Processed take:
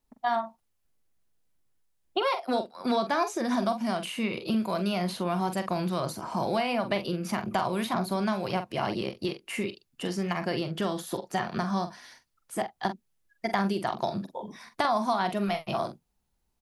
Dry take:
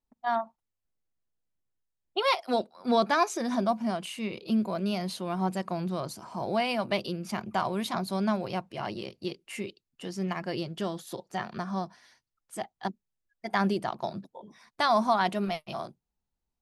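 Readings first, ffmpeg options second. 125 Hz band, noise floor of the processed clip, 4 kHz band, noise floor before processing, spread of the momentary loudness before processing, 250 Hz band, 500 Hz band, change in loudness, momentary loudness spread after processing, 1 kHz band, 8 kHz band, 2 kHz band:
+2.0 dB, -75 dBFS, 0.0 dB, under -85 dBFS, 13 LU, +1.0 dB, +1.0 dB, +0.5 dB, 7 LU, +0.5 dB, +1.0 dB, +0.5 dB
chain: -filter_complex "[0:a]equalizer=f=11k:w=7.4:g=6.5,acrossover=split=910|2300[a][b][c];[a]acompressor=threshold=-37dB:ratio=4[d];[b]acompressor=threshold=-43dB:ratio=4[e];[c]acompressor=threshold=-50dB:ratio=4[f];[d][e][f]amix=inputs=3:normalize=0,asplit=2[g][h];[h]adelay=45,volume=-9.5dB[i];[g][i]amix=inputs=2:normalize=0,volume=8.5dB"

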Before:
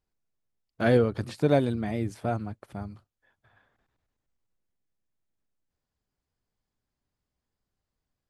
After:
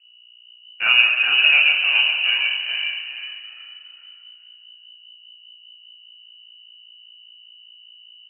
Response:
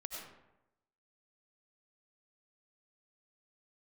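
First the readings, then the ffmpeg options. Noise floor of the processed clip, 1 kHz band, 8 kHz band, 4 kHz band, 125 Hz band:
-50 dBFS, +1.5 dB, under -25 dB, +30.0 dB, under -30 dB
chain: -filter_complex "[0:a]aeval=exprs='val(0)+0.00126*(sin(2*PI*60*n/s)+sin(2*PI*2*60*n/s)/2+sin(2*PI*3*60*n/s)/3+sin(2*PI*4*60*n/s)/4+sin(2*PI*5*60*n/s)/5)':c=same,asplit=5[a][b][c][d][e];[b]adelay=410,afreqshift=-65,volume=-4dB[f];[c]adelay=820,afreqshift=-130,volume=-13.9dB[g];[d]adelay=1230,afreqshift=-195,volume=-23.8dB[h];[e]adelay=1640,afreqshift=-260,volume=-33.7dB[i];[a][f][g][h][i]amix=inputs=5:normalize=0,asplit=2[j][k];[1:a]atrim=start_sample=2205,lowpass=3.5k,adelay=33[l];[k][l]afir=irnorm=-1:irlink=0,volume=2.5dB[m];[j][m]amix=inputs=2:normalize=0,lowpass=f=2.6k:t=q:w=0.5098,lowpass=f=2.6k:t=q:w=0.6013,lowpass=f=2.6k:t=q:w=0.9,lowpass=f=2.6k:t=q:w=2.563,afreqshift=-3000,volume=3.5dB"

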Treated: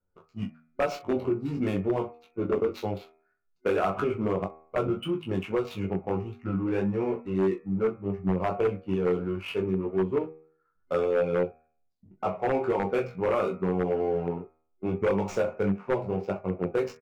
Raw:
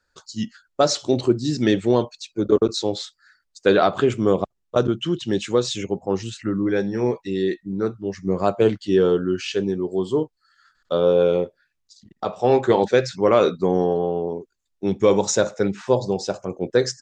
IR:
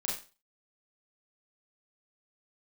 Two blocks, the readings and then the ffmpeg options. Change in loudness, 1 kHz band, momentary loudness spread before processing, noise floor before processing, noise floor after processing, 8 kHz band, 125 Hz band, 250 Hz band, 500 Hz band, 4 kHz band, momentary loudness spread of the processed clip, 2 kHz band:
-7.5 dB, -6.5 dB, 11 LU, -74 dBFS, -72 dBFS, under -20 dB, -5.0 dB, -6.5 dB, -8.0 dB, -16.0 dB, 7 LU, -6.5 dB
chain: -filter_complex "[0:a]adynamicsmooth=sensitivity=3.5:basefreq=630,asplit=2[a][b];[b]aecho=0:1:11|42:0.473|0.178[c];[a][c]amix=inputs=2:normalize=0,acompressor=threshold=-18dB:ratio=5,superequalizer=6b=0.708:11b=0.355:13b=0.631,acrossover=split=2800[d][e];[e]asoftclip=type=tanh:threshold=-27.5dB[f];[d][f]amix=inputs=2:normalize=0,flanger=delay=20:depth=2.8:speed=1.7,bandreject=f=79.32:t=h:w=4,bandreject=f=158.64:t=h:w=4,bandreject=f=237.96:t=h:w=4,bandreject=f=317.28:t=h:w=4,bandreject=f=396.6:t=h:w=4,bandreject=f=475.92:t=h:w=4,bandreject=f=555.24:t=h:w=4,bandreject=f=634.56:t=h:w=4,bandreject=f=713.88:t=h:w=4,bandreject=f=793.2:t=h:w=4,bandreject=f=872.52:t=h:w=4,bandreject=f=951.84:t=h:w=4,bandreject=f=1.03116k:t=h:w=4,bandreject=f=1.11048k:t=h:w=4,bandreject=f=1.1898k:t=h:w=4,bandreject=f=1.26912k:t=h:w=4,bandreject=f=1.34844k:t=h:w=4,bandreject=f=1.42776k:t=h:w=4,bandreject=f=1.50708k:t=h:w=4,bandreject=f=1.5864k:t=h:w=4,bandreject=f=1.66572k:t=h:w=4,bandreject=f=1.74504k:t=h:w=4,bandreject=f=1.82436k:t=h:w=4,bandreject=f=1.90368k:t=h:w=4,bandreject=f=1.983k:t=h:w=4,bandreject=f=2.06232k:t=h:w=4,bandreject=f=2.14164k:t=h:w=4,bandreject=f=2.22096k:t=h:w=4,bandreject=f=2.30028k:t=h:w=4,bandreject=f=2.3796k:t=h:w=4,bandreject=f=2.45892k:t=h:w=4,bandreject=f=2.53824k:t=h:w=4,aeval=exprs='0.126*(abs(mod(val(0)/0.126+3,4)-2)-1)':c=same,highshelf=f=3.2k:t=q:w=1.5:g=-8.5"

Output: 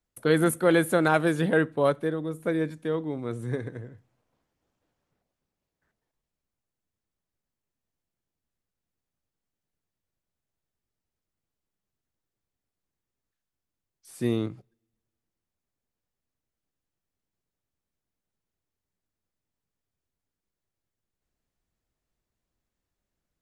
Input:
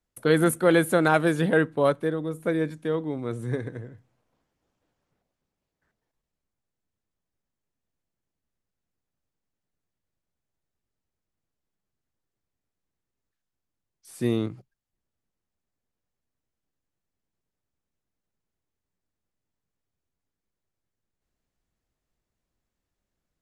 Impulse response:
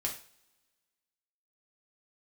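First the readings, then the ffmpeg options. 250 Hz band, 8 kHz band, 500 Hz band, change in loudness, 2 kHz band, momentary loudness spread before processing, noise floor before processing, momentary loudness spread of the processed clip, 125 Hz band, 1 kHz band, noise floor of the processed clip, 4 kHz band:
-1.5 dB, -1.5 dB, -1.5 dB, -1.5 dB, -1.5 dB, 11 LU, under -85 dBFS, 11 LU, -1.5 dB, -1.5 dB, under -85 dBFS, -1.5 dB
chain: -filter_complex "[0:a]asplit=2[a][b];[1:a]atrim=start_sample=2205[c];[b][c]afir=irnorm=-1:irlink=0,volume=-23dB[d];[a][d]amix=inputs=2:normalize=0,volume=-2dB"

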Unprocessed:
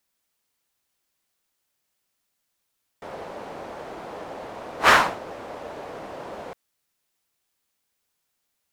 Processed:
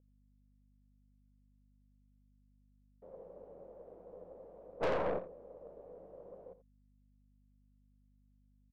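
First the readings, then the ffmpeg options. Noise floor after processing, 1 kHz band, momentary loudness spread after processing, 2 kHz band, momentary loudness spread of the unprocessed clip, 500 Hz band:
-69 dBFS, -20.5 dB, 19 LU, -25.5 dB, 20 LU, -7.5 dB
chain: -filter_complex "[0:a]agate=range=-27dB:threshold=-31dB:ratio=16:detection=peak,equalizer=f=180:t=o:w=0.23:g=12,acompressor=threshold=-29dB:ratio=8,aeval=exprs='val(0)+0.000316*(sin(2*PI*50*n/s)+sin(2*PI*2*50*n/s)/2+sin(2*PI*3*50*n/s)/3+sin(2*PI*4*50*n/s)/4+sin(2*PI*5*50*n/s)/5)':c=same,lowpass=f=510:t=q:w=4.9,crystalizer=i=7.5:c=0,aeval=exprs='(tanh(50.1*val(0)+0.55)-tanh(0.55))/50.1':c=same,asplit=2[a][b];[b]aecho=0:1:84:0.188[c];[a][c]amix=inputs=2:normalize=0,volume=4.5dB"

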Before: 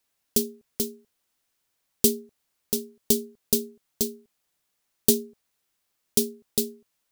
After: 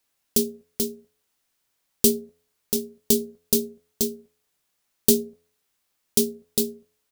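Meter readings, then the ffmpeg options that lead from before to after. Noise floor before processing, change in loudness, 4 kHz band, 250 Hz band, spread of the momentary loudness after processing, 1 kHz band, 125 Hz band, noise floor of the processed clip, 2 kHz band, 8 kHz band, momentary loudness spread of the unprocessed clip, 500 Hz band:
-77 dBFS, +2.0 dB, +2.0 dB, +3.0 dB, 9 LU, +2.0 dB, +2.0 dB, -75 dBFS, +2.0 dB, +2.0 dB, 9 LU, +3.0 dB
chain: -filter_complex "[0:a]asplit=2[a][b];[b]adelay=22,volume=-11dB[c];[a][c]amix=inputs=2:normalize=0,bandreject=f=84.88:t=h:w=4,bandreject=f=169.76:t=h:w=4,bandreject=f=254.64:t=h:w=4,bandreject=f=339.52:t=h:w=4,bandreject=f=424.4:t=h:w=4,bandreject=f=509.28:t=h:w=4,bandreject=f=594.16:t=h:w=4,bandreject=f=679.04:t=h:w=4,volume=1.5dB"

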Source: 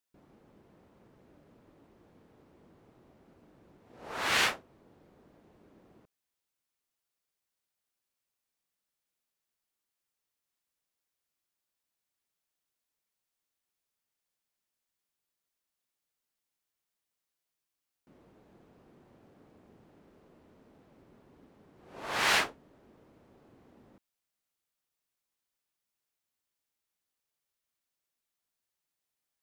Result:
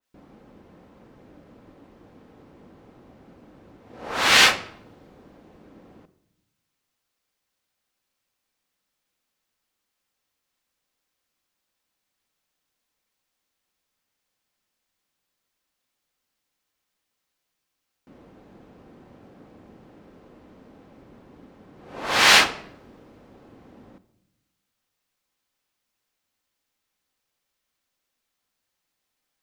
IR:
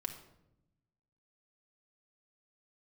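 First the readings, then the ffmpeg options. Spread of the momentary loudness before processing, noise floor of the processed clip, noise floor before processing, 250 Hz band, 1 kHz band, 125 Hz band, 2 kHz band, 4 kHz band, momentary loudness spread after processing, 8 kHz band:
18 LU, -81 dBFS, under -85 dBFS, +11.0 dB, +10.5 dB, +9.5 dB, +11.5 dB, +14.0 dB, 18 LU, +13.0 dB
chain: -filter_complex "[0:a]asplit=2[a][b];[1:a]atrim=start_sample=2205,lowpass=7.4k[c];[b][c]afir=irnorm=-1:irlink=0,volume=-1.5dB[d];[a][d]amix=inputs=2:normalize=0,adynamicequalizer=threshold=0.00708:dfrequency=2700:dqfactor=0.7:tfrequency=2700:tqfactor=0.7:attack=5:release=100:ratio=0.375:range=3:mode=boostabove:tftype=highshelf,volume=5.5dB"

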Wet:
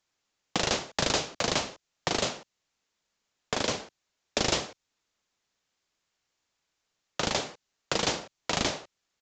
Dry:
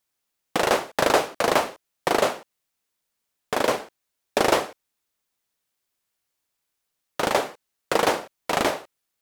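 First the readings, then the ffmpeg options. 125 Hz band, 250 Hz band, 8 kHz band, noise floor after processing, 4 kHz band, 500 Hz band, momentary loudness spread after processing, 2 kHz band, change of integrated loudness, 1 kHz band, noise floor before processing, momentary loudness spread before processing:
+1.5 dB, -5.5 dB, +0.5 dB, -82 dBFS, +0.5 dB, -10.0 dB, 11 LU, -6.5 dB, -6.0 dB, -10.0 dB, -80 dBFS, 12 LU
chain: -filter_complex "[0:a]acrossover=split=200|3000[a][b][c];[b]acompressor=threshold=-37dB:ratio=3[d];[a][d][c]amix=inputs=3:normalize=0,aresample=16000,aresample=44100,volume=3dB"

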